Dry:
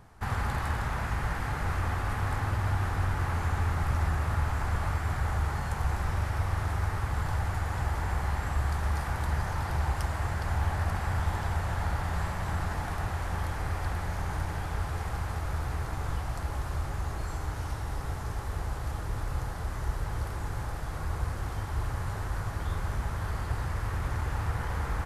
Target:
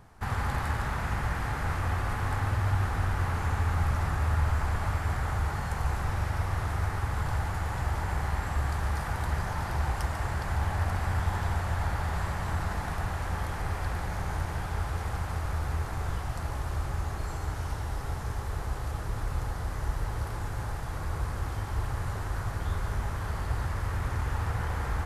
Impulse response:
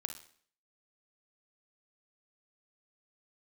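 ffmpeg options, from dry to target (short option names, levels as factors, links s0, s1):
-filter_complex "[0:a]asplit=2[s0][s1];[1:a]atrim=start_sample=2205,adelay=145[s2];[s1][s2]afir=irnorm=-1:irlink=0,volume=0.422[s3];[s0][s3]amix=inputs=2:normalize=0"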